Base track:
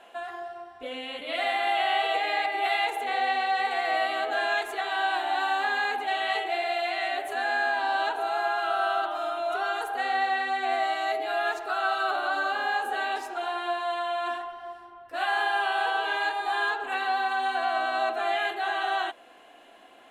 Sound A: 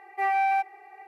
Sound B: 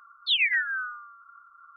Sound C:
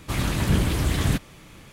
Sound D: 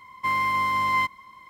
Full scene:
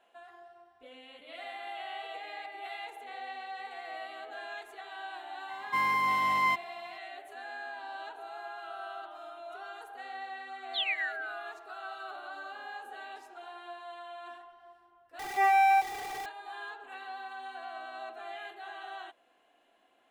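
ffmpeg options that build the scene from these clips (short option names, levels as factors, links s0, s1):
-filter_complex "[0:a]volume=0.168[s0];[4:a]highpass=150[s1];[1:a]aeval=exprs='val(0)+0.5*0.0168*sgn(val(0))':c=same[s2];[s0]asplit=2[s3][s4];[s3]atrim=end=15.194[s5];[s2]atrim=end=1.07[s6];[s4]atrim=start=16.256[s7];[s1]atrim=end=1.49,asetpts=PTS-STARTPTS,volume=0.631,afade=t=in:d=0.004:c=hsin,afade=t=out:st=1.486:d=0.004:c=hsin,adelay=242109S[s8];[2:a]atrim=end=1.76,asetpts=PTS-STARTPTS,volume=0.376,afade=t=in:d=0.004:c=hsin,afade=t=out:st=1.756:d=0.004:c=hsin,adelay=10470[s9];[s5][s6]acrossfade=d=0.004:c1=hsin:c2=hsin[s10];[s10][s7]acrossfade=d=0.004:c1=hsin:c2=hsin[s11];[s11][s8][s9]amix=inputs=3:normalize=0"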